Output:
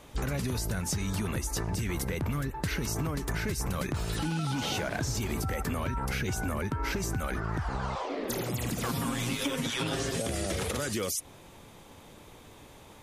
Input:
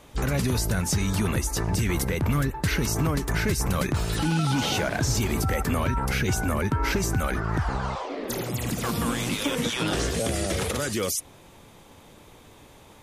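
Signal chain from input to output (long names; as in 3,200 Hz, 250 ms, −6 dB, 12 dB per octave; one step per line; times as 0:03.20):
0:08.89–0:10.22: comb filter 7.4 ms, depth 80%
downward compressor, threshold −27 dBFS, peak gain reduction 9 dB
level −1 dB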